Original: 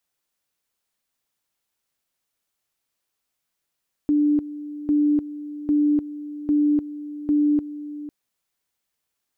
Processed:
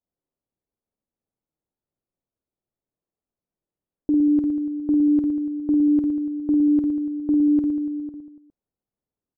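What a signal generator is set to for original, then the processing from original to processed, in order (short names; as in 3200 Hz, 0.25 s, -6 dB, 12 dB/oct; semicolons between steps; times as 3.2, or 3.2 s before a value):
two-level tone 295 Hz -15.5 dBFS, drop 15 dB, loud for 0.30 s, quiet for 0.50 s, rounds 5
low-pass opened by the level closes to 500 Hz, open at -19 dBFS; reverse bouncing-ball echo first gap 50 ms, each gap 1.25×, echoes 5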